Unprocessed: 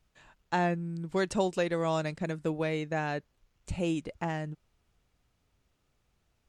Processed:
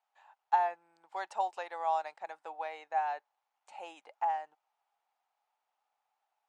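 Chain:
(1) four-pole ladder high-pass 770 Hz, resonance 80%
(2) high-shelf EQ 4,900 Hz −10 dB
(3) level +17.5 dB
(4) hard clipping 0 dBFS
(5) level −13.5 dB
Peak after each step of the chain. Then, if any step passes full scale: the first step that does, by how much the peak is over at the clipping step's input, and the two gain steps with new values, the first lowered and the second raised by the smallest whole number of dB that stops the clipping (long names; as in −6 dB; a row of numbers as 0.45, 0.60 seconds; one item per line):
−20.0, −20.0, −2.5, −2.5, −16.0 dBFS
no step passes full scale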